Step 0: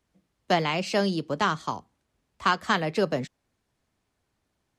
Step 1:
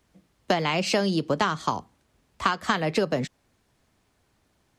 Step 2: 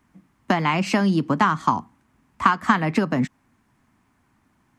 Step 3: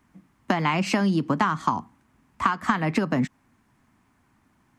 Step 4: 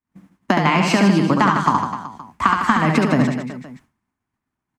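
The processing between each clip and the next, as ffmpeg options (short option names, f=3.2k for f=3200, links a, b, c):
-af "acompressor=threshold=-28dB:ratio=12,volume=8.5dB"
-af "equalizer=f=125:t=o:w=1:g=4,equalizer=f=250:t=o:w=1:g=11,equalizer=f=500:t=o:w=1:g=-8,equalizer=f=1k:t=o:w=1:g=9,equalizer=f=2k:t=o:w=1:g=5,equalizer=f=4k:t=o:w=1:g=-6,volume=-1dB"
-af "acompressor=threshold=-19dB:ratio=3"
-af "aecho=1:1:70|154|254.8|375.8|520.9:0.631|0.398|0.251|0.158|0.1,agate=range=-33dB:threshold=-47dB:ratio=3:detection=peak,volume=5.5dB"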